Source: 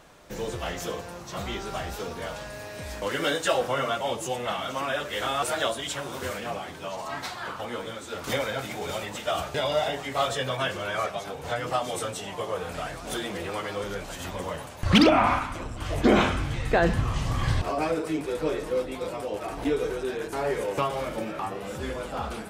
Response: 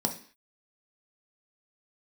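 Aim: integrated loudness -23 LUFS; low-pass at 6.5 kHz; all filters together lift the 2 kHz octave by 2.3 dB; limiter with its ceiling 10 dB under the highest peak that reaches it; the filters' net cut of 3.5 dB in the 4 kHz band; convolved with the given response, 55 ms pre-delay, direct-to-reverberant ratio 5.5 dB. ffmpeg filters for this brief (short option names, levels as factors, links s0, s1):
-filter_complex "[0:a]lowpass=6500,equalizer=f=2000:t=o:g=4.5,equalizer=f=4000:t=o:g=-6.5,alimiter=limit=0.133:level=0:latency=1,asplit=2[s0][s1];[1:a]atrim=start_sample=2205,adelay=55[s2];[s1][s2]afir=irnorm=-1:irlink=0,volume=0.251[s3];[s0][s3]amix=inputs=2:normalize=0,volume=1.78"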